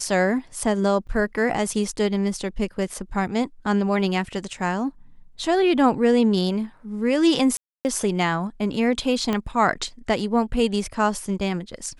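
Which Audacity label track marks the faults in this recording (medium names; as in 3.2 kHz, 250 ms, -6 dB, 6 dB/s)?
1.070000	1.070000	dropout 4.6 ms
7.570000	7.850000	dropout 279 ms
9.330000	9.330000	pop -11 dBFS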